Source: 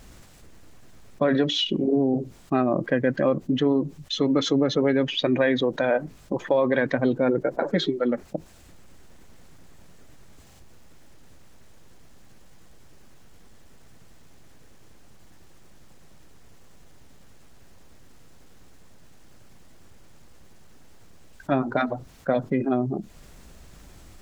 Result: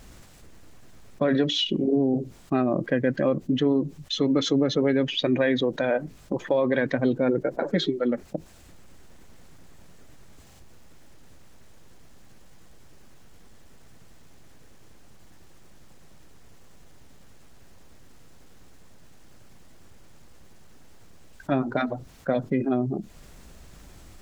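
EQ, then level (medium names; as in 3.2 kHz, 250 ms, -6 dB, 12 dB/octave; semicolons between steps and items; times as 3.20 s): dynamic bell 1 kHz, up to -4 dB, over -37 dBFS, Q 0.9; 0.0 dB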